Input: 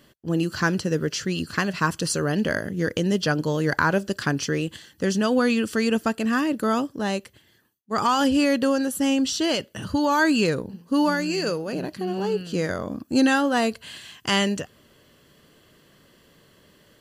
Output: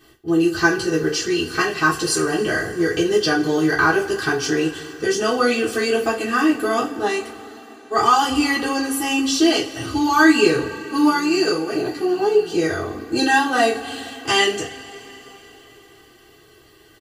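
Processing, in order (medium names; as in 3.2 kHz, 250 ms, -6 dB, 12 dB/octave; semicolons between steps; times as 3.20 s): comb 2.6 ms, depth 91%; reverberation, pre-delay 3 ms, DRR -5.5 dB; trim -3.5 dB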